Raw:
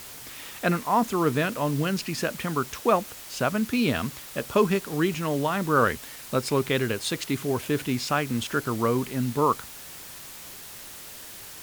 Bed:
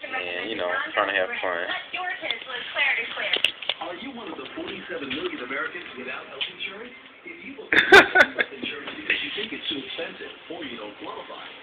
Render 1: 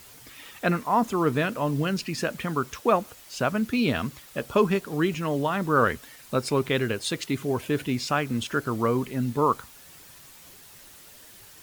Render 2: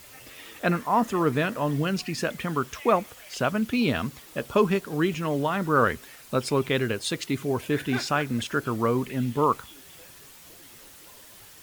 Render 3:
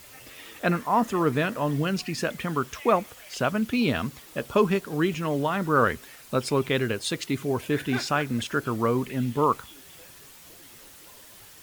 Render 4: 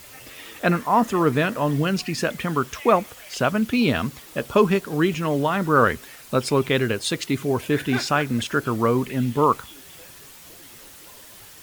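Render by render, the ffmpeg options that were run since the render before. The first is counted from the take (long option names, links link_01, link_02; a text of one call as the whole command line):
ffmpeg -i in.wav -af "afftdn=noise_reduction=8:noise_floor=-42" out.wav
ffmpeg -i in.wav -i bed.wav -filter_complex "[1:a]volume=-22.5dB[link_01];[0:a][link_01]amix=inputs=2:normalize=0" out.wav
ffmpeg -i in.wav -af anull out.wav
ffmpeg -i in.wav -af "volume=4dB" out.wav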